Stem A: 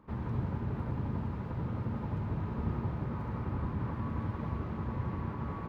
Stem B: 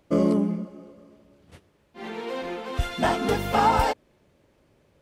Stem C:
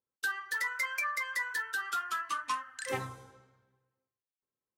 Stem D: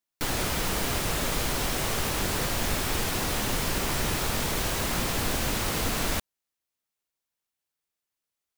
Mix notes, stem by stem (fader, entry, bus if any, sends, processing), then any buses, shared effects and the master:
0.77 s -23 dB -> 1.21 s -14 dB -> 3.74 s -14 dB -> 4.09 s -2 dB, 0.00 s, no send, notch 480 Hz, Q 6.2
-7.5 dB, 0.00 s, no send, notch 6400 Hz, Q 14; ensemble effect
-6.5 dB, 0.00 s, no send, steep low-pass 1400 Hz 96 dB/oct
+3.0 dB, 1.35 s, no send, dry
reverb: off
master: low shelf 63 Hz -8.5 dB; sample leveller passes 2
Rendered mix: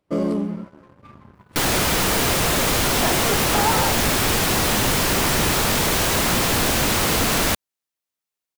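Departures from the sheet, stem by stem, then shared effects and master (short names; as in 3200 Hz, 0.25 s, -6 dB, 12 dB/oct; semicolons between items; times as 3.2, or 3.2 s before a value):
stem B: missing ensemble effect; stem C -6.5 dB -> -16.5 dB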